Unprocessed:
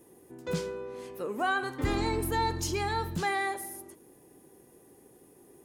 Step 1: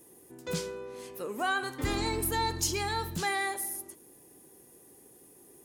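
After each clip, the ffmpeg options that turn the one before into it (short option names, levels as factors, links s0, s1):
-af "highshelf=f=3100:g=9.5,volume=0.75"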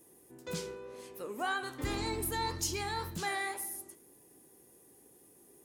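-af "flanger=delay=9.1:depth=8.3:regen=74:speed=1.9:shape=sinusoidal"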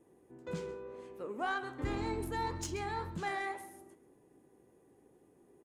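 -af "aexciter=amount=3.5:drive=3.8:freq=6800,adynamicsmooth=sensitivity=1.5:basefreq=2200,aecho=1:1:133:0.141"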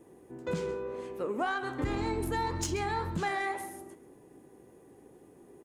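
-af "acompressor=threshold=0.0141:ratio=6,volume=2.82"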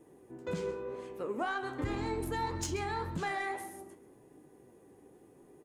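-af "flanger=delay=6.5:depth=4:regen=71:speed=0.9:shape=sinusoidal,volume=1.19"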